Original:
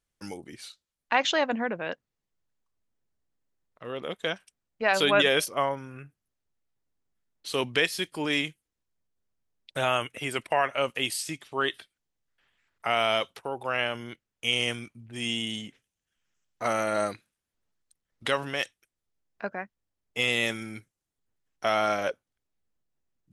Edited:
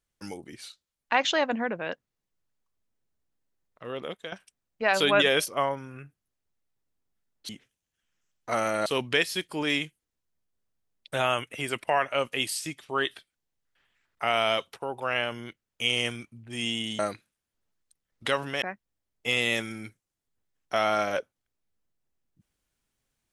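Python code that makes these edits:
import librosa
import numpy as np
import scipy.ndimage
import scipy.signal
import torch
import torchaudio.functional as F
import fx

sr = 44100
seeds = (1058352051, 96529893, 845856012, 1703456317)

y = fx.edit(x, sr, fx.fade_out_to(start_s=4.02, length_s=0.3, floor_db=-14.0),
    fx.move(start_s=15.62, length_s=1.37, to_s=7.49),
    fx.cut(start_s=18.62, length_s=0.91), tone=tone)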